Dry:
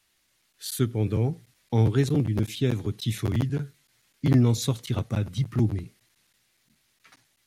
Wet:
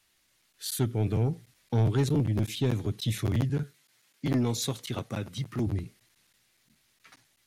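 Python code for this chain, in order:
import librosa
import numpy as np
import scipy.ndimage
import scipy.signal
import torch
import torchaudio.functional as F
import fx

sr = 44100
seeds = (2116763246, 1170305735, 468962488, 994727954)

y = fx.highpass(x, sr, hz=280.0, slope=6, at=(3.63, 5.67))
y = 10.0 ** (-18.5 / 20.0) * np.tanh(y / 10.0 ** (-18.5 / 20.0))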